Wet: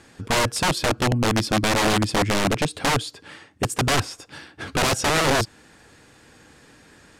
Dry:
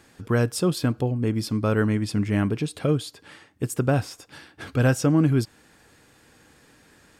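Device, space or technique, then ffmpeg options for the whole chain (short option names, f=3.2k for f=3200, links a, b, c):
overflowing digital effects unit: -af "aeval=exprs='(mod(8.91*val(0)+1,2)-1)/8.91':c=same,lowpass=9.7k,volume=4.5dB"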